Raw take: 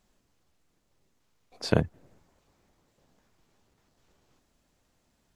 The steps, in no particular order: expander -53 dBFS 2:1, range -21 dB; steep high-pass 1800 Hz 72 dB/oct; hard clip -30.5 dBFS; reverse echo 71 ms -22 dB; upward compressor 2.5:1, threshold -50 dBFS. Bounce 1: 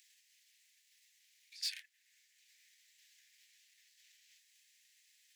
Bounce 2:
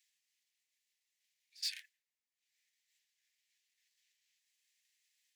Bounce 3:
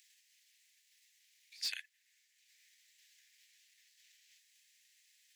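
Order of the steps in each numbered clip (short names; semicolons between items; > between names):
reverse echo > hard clip > expander > steep high-pass > upward compressor; upward compressor > hard clip > steep high-pass > expander > reverse echo; expander > steep high-pass > upward compressor > hard clip > reverse echo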